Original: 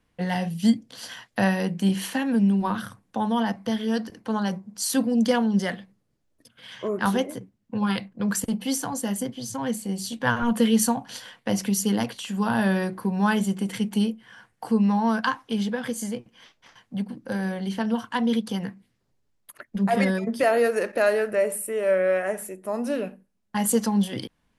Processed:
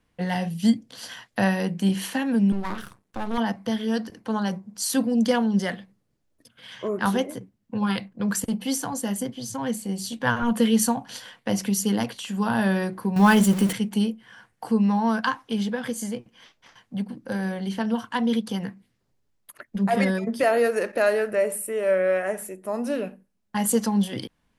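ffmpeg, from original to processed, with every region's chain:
-filter_complex "[0:a]asettb=1/sr,asplit=3[a][b][c];[a]atrim=end=2.524[d];[b]atrim=start=2.52:end=3.38,asetpts=PTS-STARTPTS,afade=t=in:d=0.004:c=qsin,afade=t=out:st=0.856:d=0.004:c=qsin,highpass=120,aeval=exprs='max(val(0),0)':c=same[e];[c]atrim=start=3.376[f];[d][e]acrossfade=d=0.004:c1=hsin:c2=qsin[g];[g][f]acrossfade=d=0.004:c1=qsin:c2=hsin,asettb=1/sr,asplit=3[h][i][j];[h]atrim=end=13.164[k];[i]atrim=start=13.16:end=13.73,asetpts=PTS-STARTPTS,afade=t=in:d=0.004:c=qsin,afade=t=out:st=0.566:d=0.004:c=qsin,aeval=exprs='val(0)+0.5*0.02*sgn(val(0))':c=same,highshelf=f=9.5k:g=4,acontrast=34[l];[j]atrim=start=13.726[m];[k][l]acrossfade=d=0.004:c1=hsin:c2=qsin[n];[n][m]acrossfade=d=0.004:c1=qsin:c2=hsin"

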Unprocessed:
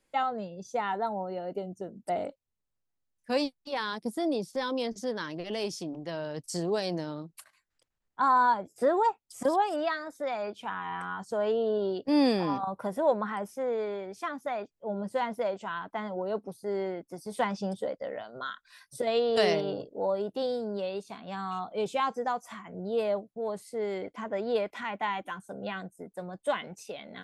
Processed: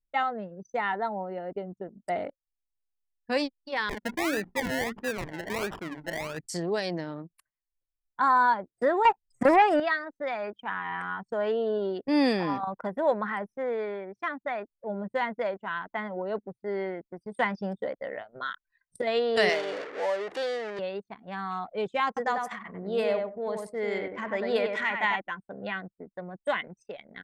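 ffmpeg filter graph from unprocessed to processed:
-filter_complex "[0:a]asettb=1/sr,asplit=3[a][b][c];[a]atrim=end=3.894[d];[b]atrim=start=3.89:end=6.46,asetpts=PTS-STARTPTS,afade=t=in:d=0.004:c=qsin,afade=t=out:st=2.566:d=0.004:c=qsin,bandreject=f=60:t=h:w=6,bandreject=f=120:t=h:w=6,bandreject=f=180:t=h:w=6,bandreject=f=240:t=h:w=6,bandreject=f=300:t=h:w=6,acrusher=samples=29:mix=1:aa=0.000001:lfo=1:lforange=17.4:lforate=1.5[e];[c]atrim=start=6.456[f];[d][e]acrossfade=d=0.004:c1=hsin:c2=qsin[g];[g][f]acrossfade=d=0.004:c1=qsin:c2=hsin,asettb=1/sr,asplit=3[h][i][j];[h]atrim=end=9.054[k];[i]atrim=start=9.05:end=9.8,asetpts=PTS-STARTPTS,afade=t=in:d=0.004:c=qsin,afade=t=out:st=0.746:d=0.004:c=qsin,acrossover=split=2600[l][m];[m]acompressor=threshold=-55dB:ratio=4:attack=1:release=60[n];[l][n]amix=inputs=2:normalize=0,lowshelf=f=180:g=7,aeval=exprs='0.188*sin(PI/2*1.58*val(0)/0.188)':c=same[o];[j]atrim=start=9.796[p];[k][o]acrossfade=d=0.004:c1=hsin:c2=qsin[q];[q][p]acrossfade=d=0.004:c1=qsin:c2=hsin,asettb=1/sr,asplit=3[r][s][t];[r]atrim=end=19.494[u];[s]atrim=start=19.49:end=20.79,asetpts=PTS-STARTPTS,afade=t=in:d=0.004:c=qsin,afade=t=out:st=1.296:d=0.004:c=qsin,aeval=exprs='val(0)+0.5*0.0251*sgn(val(0))':c=same,highpass=490,lowpass=7.7k[v];[t]atrim=start=20.786[w];[u][v]acrossfade=d=0.004:c1=hsin:c2=qsin[x];[x][w]acrossfade=d=0.004:c1=qsin:c2=hsin,asettb=1/sr,asplit=3[y][z][aa];[y]atrim=end=22.074[ab];[z]atrim=start=22.07:end=25.16,asetpts=PTS-STARTPTS,afade=t=in:d=0.004:c=qsin,afade=t=out:st=3.086:d=0.004:c=qsin,highshelf=f=2.5k:g=6,asplit=2[ac][ad];[ad]adelay=96,lowpass=f=2.4k:p=1,volume=-3.5dB,asplit=2[ae][af];[af]adelay=96,lowpass=f=2.4k:p=1,volume=0.25,asplit=2[ag][ah];[ah]adelay=96,lowpass=f=2.4k:p=1,volume=0.25,asplit=2[ai][aj];[aj]adelay=96,lowpass=f=2.4k:p=1,volume=0.25[ak];[ac][ae][ag][ai][ak]amix=inputs=5:normalize=0,atrim=end_sample=136269[al];[aa]atrim=start=25.156[am];[ab][al]acrossfade=d=0.004:c1=hsin:c2=qsin[an];[an][am]acrossfade=d=0.004:c1=qsin:c2=hsin,anlmdn=0.398,equalizer=f=1.9k:w=2.2:g=9"

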